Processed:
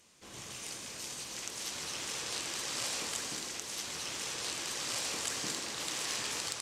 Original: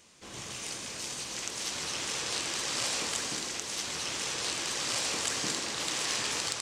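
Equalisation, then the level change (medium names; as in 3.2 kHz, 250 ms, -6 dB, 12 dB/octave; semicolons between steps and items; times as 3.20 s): peaking EQ 13 kHz +9 dB 0.49 oct; -5.0 dB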